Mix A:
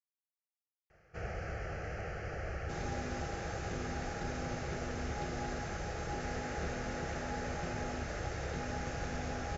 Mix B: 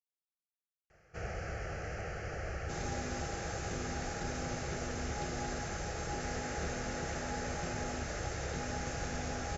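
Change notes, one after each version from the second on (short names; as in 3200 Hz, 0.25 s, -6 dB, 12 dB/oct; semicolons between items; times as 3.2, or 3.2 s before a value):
master: remove air absorption 91 m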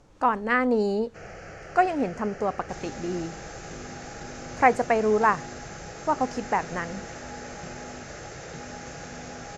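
speech: unmuted; first sound: add HPF 130 Hz 12 dB/oct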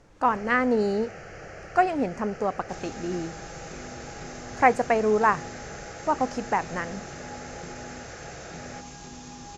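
first sound: entry -0.90 s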